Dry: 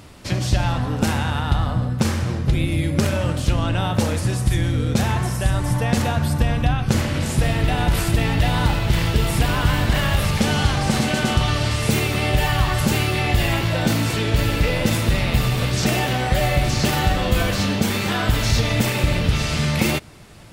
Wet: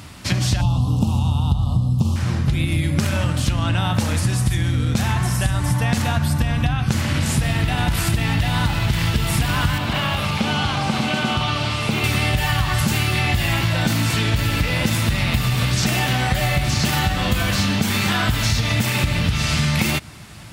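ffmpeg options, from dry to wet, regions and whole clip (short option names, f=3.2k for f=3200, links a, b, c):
-filter_complex "[0:a]asettb=1/sr,asplit=3[a][b][c];[a]atrim=end=0.614[d];[b]atrim=start=0.61:end=2.16,asetpts=PTS-STARTPTS,afade=t=in:d=0.004:c=qsin,afade=t=out:st=1.546:d=0.004:c=qsin,bass=f=250:g=8,treble=f=4k:g=7,acrossover=split=2900[e][f];[f]acompressor=threshold=-38dB:ratio=4:attack=1:release=60[g];[e][g]amix=inputs=2:normalize=0,asuperstop=centerf=1800:order=8:qfactor=1.1[h];[c]atrim=start=2.156[i];[d][h]acrossfade=d=0.004:c1=hsin:c2=qsin[j];[j][i]acrossfade=d=0.004:c1=qsin:c2=hsin,asettb=1/sr,asplit=3[k][l][m];[k]atrim=end=9.784[n];[l]atrim=start=9.78:end=12.04,asetpts=PTS-STARTPTS,afade=t=in:d=0.004:c=qsin,afade=t=out:st=2.256:d=0.004:c=qsin,acrossover=split=3800[o][p];[p]acompressor=threshold=-45dB:ratio=4:attack=1:release=60[q];[o][q]amix=inputs=2:normalize=0,highpass=f=260:p=1,equalizer=f=1.8k:t=o:w=0.42:g=-9[r];[m]atrim=start=12.036[s];[n][r]acrossfade=d=0.004:c1=hsin:c2=qsin[t];[t][s]acrossfade=d=0.004:c1=qsin:c2=hsin,highpass=57,equalizer=f=460:w=1.2:g=-9.5,acompressor=threshold=-22dB:ratio=6,volume=6.5dB"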